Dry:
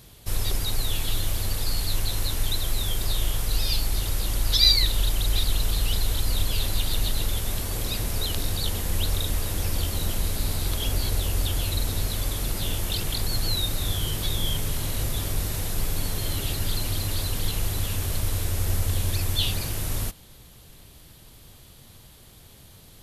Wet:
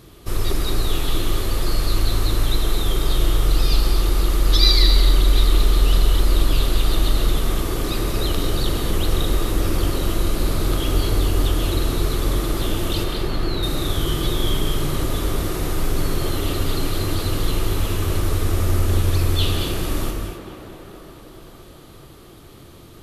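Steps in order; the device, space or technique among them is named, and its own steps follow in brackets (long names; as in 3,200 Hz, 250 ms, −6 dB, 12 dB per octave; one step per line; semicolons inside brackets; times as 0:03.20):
inside a helmet (high-shelf EQ 4,500 Hz −7 dB; hollow resonant body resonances 340/1,200 Hz, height 10 dB, ringing for 20 ms)
0:13.04–0:13.63: bass and treble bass −3 dB, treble −12 dB
tape delay 218 ms, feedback 85%, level −9 dB, low-pass 3,200 Hz
reverb whose tail is shaped and stops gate 300 ms flat, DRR 3.5 dB
level +3 dB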